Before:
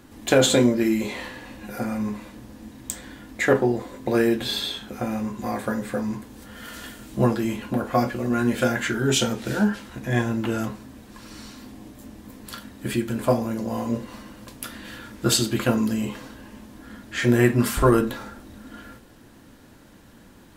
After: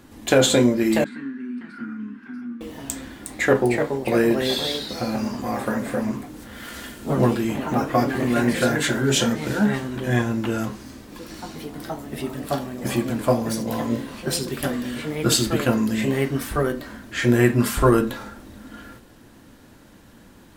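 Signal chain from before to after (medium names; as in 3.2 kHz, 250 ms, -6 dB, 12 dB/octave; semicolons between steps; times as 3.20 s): ever faster or slower copies 678 ms, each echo +2 st, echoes 3, each echo -6 dB; 1.04–2.61 s: two resonant band-passes 600 Hz, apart 2.6 oct; trim +1 dB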